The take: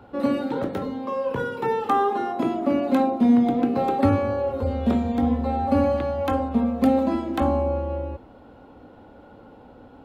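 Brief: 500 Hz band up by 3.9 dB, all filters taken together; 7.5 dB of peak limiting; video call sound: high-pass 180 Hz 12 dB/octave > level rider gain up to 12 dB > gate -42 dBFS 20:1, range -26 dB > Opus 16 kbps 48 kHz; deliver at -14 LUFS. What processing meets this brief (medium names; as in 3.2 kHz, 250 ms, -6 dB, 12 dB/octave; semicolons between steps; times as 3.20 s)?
peaking EQ 500 Hz +4.5 dB; peak limiter -13 dBFS; high-pass 180 Hz 12 dB/octave; level rider gain up to 12 dB; gate -42 dBFS 20:1, range -26 dB; trim +9.5 dB; Opus 16 kbps 48 kHz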